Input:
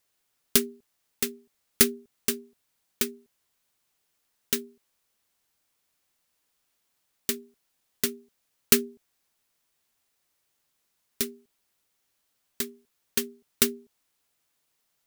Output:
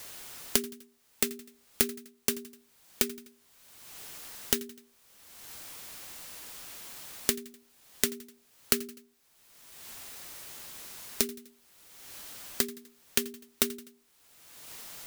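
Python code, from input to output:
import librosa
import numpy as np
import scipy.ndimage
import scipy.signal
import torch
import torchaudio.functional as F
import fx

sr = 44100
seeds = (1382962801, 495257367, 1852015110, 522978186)

y = fx.echo_feedback(x, sr, ms=83, feedback_pct=39, wet_db=-18.5)
y = fx.band_squash(y, sr, depth_pct=100)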